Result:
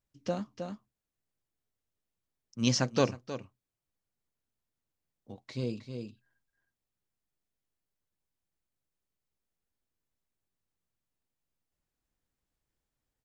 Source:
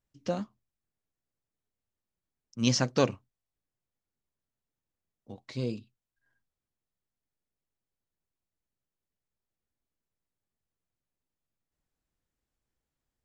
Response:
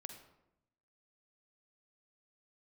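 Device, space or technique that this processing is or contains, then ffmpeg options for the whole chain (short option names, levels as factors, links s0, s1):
ducked delay: -filter_complex "[0:a]asplit=3[s0][s1][s2];[s1]adelay=314,volume=0.668[s3];[s2]apad=whole_len=597927[s4];[s3][s4]sidechaincompress=threshold=0.0158:ratio=8:attack=12:release=468[s5];[s0][s5]amix=inputs=2:normalize=0,volume=0.841"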